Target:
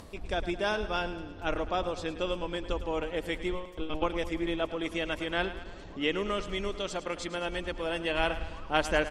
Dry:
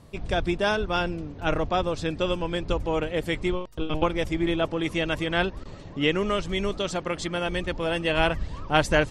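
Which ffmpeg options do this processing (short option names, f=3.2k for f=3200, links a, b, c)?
-af "equalizer=f=130:t=o:w=0.62:g=-14,acompressor=mode=upward:threshold=-34dB:ratio=2.5,aecho=1:1:107|214|321|428|535|642:0.224|0.128|0.0727|0.0415|0.0236|0.0135,volume=-5.5dB"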